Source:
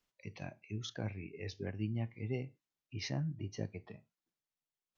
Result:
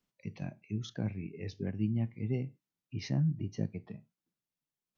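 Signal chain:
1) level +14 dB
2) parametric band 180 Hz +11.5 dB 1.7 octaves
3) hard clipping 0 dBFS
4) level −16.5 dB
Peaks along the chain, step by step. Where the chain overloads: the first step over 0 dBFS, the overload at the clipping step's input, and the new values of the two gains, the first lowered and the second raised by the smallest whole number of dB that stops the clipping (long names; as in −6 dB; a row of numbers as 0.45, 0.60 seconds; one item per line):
−10.0, −3.5, −3.5, −20.0 dBFS
no step passes full scale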